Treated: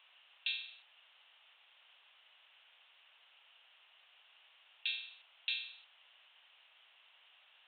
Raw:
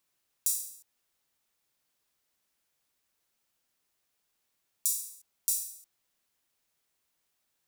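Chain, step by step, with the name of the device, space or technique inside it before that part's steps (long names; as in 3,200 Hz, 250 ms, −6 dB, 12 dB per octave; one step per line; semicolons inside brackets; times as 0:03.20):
musical greeting card (downsampling to 8,000 Hz; high-pass filter 650 Hz 24 dB per octave; parametric band 2,900 Hz +11 dB 0.43 octaves)
level +16.5 dB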